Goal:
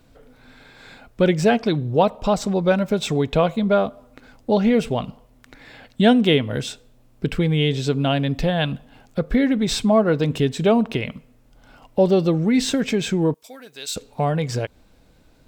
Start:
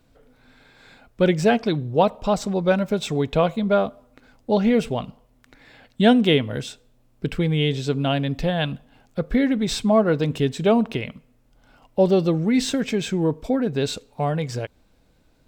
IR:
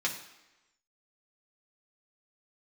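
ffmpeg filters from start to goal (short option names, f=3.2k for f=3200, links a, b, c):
-filter_complex "[0:a]asettb=1/sr,asplit=3[a][b][c];[a]atrim=end=13.344[d];[b]atrim=start=13.34:end=13.96,asetpts=PTS-STARTPTS,afade=t=in:d=0.004:c=qsin,afade=t=out:st=0.616:d=0.004:c=qsin,aderivative[e];[c]atrim=start=13.956[f];[d][e]acrossfade=d=0.004:c1=hsin:c2=qsin[g];[g][f]acrossfade=d=0.004:c1=qsin:c2=hsin,asplit=2[h][i];[i]acompressor=threshold=-28dB:ratio=6,volume=1dB[j];[h][j]amix=inputs=2:normalize=0,volume=-1dB"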